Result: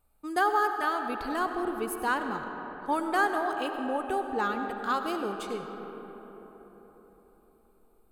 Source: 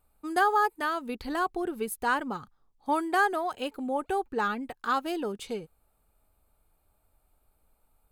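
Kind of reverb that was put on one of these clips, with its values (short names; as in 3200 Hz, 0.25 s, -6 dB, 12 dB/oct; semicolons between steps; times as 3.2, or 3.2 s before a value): digital reverb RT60 4.6 s, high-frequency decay 0.4×, pre-delay 45 ms, DRR 5.5 dB; gain -1.5 dB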